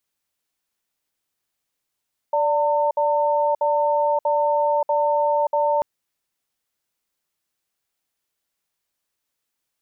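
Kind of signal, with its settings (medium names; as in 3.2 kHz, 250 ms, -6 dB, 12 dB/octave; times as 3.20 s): cadence 585 Hz, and 905 Hz, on 0.58 s, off 0.06 s, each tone -19.5 dBFS 3.49 s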